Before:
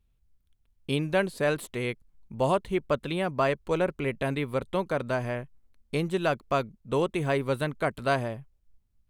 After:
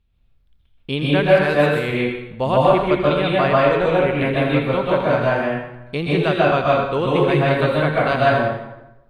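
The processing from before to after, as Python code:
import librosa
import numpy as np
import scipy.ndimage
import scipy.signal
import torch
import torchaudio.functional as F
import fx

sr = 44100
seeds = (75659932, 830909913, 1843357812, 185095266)

p1 = fx.high_shelf_res(x, sr, hz=5100.0, db=-10.5, q=1.5)
p2 = p1 + fx.echo_wet_highpass(p1, sr, ms=83, feedback_pct=43, hz=1500.0, wet_db=-9, dry=0)
p3 = fx.rev_plate(p2, sr, seeds[0], rt60_s=0.94, hf_ratio=0.55, predelay_ms=115, drr_db=-5.5)
y = p3 * 10.0 ** (3.5 / 20.0)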